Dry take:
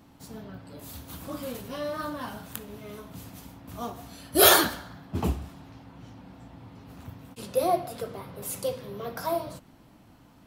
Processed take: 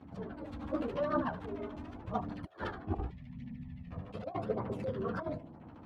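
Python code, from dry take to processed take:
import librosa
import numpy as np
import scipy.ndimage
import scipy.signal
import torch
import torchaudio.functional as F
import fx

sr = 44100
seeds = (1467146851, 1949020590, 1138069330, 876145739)

p1 = scipy.signal.sosfilt(scipy.signal.butter(2, 63.0, 'highpass', fs=sr, output='sos'), x)
p2 = p1 + fx.echo_feedback(p1, sr, ms=68, feedback_pct=58, wet_db=-19, dry=0)
p3 = fx.over_compress(p2, sr, threshold_db=-31.0, ratio=-0.5)
p4 = fx.filter_lfo_lowpass(p3, sr, shape='saw_down', hz=7.6, low_hz=560.0, high_hz=2700.0, q=0.86)
p5 = fx.stretch_grains(p4, sr, factor=0.56, grain_ms=30.0)
p6 = fx.spec_box(p5, sr, start_s=3.09, length_s=0.82, low_hz=270.0, high_hz=1700.0, gain_db=-20)
p7 = fx.chorus_voices(p6, sr, voices=2, hz=0.43, base_ms=11, depth_ms=1.9, mix_pct=70)
y = p7 * librosa.db_to_amplitude(1.0)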